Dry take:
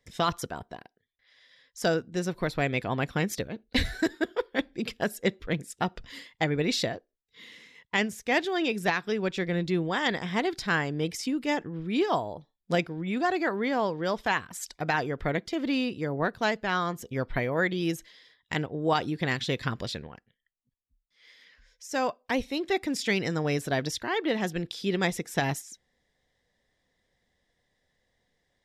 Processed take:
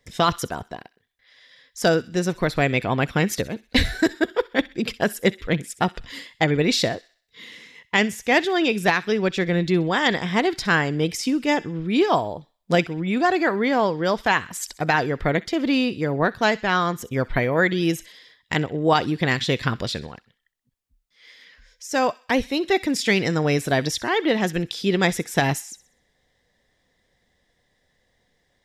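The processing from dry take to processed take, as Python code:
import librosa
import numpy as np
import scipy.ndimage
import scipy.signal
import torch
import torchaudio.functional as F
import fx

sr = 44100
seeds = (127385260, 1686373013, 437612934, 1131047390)

y = fx.echo_wet_highpass(x, sr, ms=64, feedback_pct=43, hz=1700.0, wet_db=-17.5)
y = y * librosa.db_to_amplitude(7.0)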